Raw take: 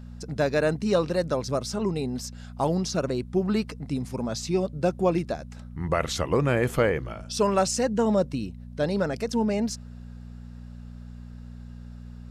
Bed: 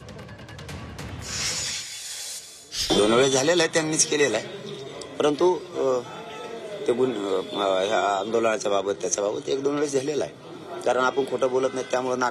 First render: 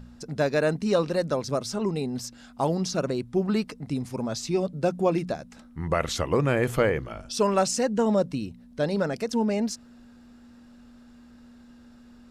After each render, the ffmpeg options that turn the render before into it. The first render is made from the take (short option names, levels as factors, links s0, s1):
-af "bandreject=f=60:t=h:w=4,bandreject=f=120:t=h:w=4,bandreject=f=180:t=h:w=4"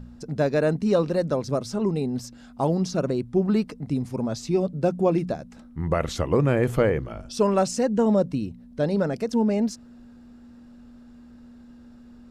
-af "tiltshelf=f=840:g=4"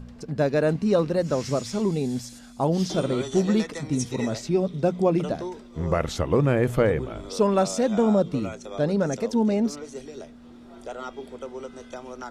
-filter_complex "[1:a]volume=0.2[s0];[0:a][s0]amix=inputs=2:normalize=0"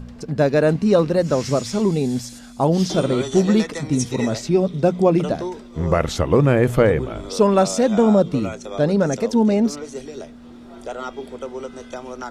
-af "volume=1.88"